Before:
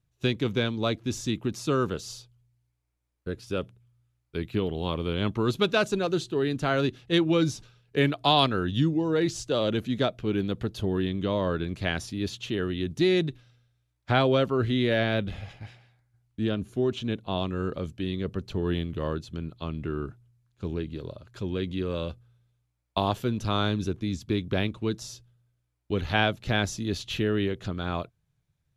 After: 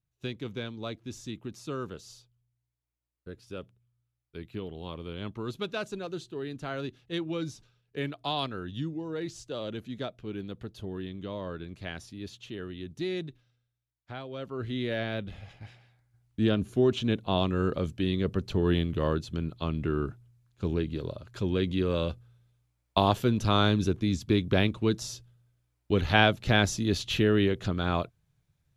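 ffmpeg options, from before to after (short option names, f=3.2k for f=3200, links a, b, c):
-af "volume=12dB,afade=t=out:st=13.18:d=1.11:silence=0.334965,afade=t=in:st=14.29:d=0.48:silence=0.237137,afade=t=in:st=15.4:d=1.05:silence=0.334965"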